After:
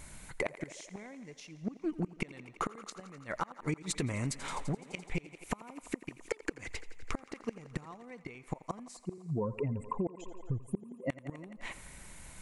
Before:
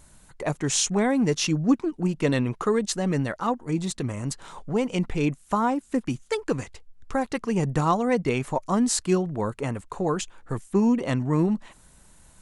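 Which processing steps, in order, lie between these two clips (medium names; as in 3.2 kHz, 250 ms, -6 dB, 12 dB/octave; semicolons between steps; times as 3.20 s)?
8.97–11.10 s: spectral contrast enhancement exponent 2.3; inverted gate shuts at -17 dBFS, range -30 dB; thinning echo 85 ms, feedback 81%, high-pass 220 Hz, level -18 dB; compression 6:1, threshold -34 dBFS, peak gain reduction 11 dB; peaking EQ 2.2 kHz +10.5 dB 0.37 oct; trim +3 dB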